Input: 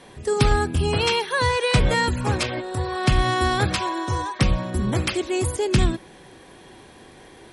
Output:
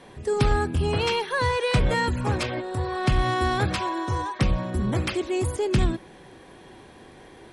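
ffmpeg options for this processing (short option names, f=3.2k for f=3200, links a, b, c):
-filter_complex "[0:a]highshelf=f=3.2k:g=-6,asplit=2[a][b];[b]asoftclip=type=tanh:threshold=-23.5dB,volume=-6dB[c];[a][c]amix=inputs=2:normalize=0,volume=-4dB"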